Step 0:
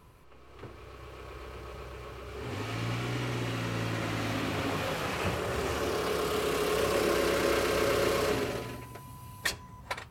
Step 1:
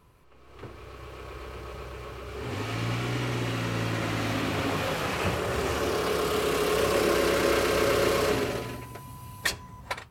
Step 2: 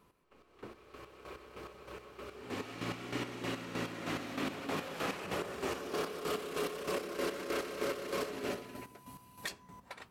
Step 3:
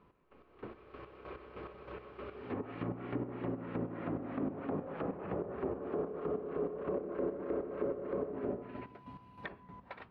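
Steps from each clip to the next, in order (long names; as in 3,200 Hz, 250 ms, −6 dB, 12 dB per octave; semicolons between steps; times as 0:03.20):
automatic gain control gain up to 6.5 dB; level −3 dB
low shelf with overshoot 150 Hz −8.5 dB, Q 1.5; brickwall limiter −20.5 dBFS, peak gain reduction 10.5 dB; square-wave tremolo 3.2 Hz, depth 60%, duty 35%; level −5 dB
treble cut that deepens with the level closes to 650 Hz, closed at −34.5 dBFS; high-frequency loss of the air 410 metres; level +3 dB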